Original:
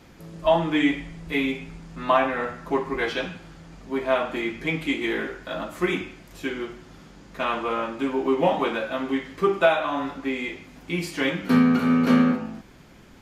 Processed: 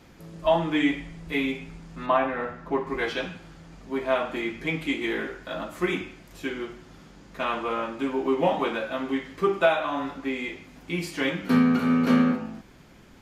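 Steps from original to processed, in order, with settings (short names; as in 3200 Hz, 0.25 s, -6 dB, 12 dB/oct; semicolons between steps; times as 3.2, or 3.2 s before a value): 2.06–2.87 LPF 2300 Hz 6 dB/oct; gain -2 dB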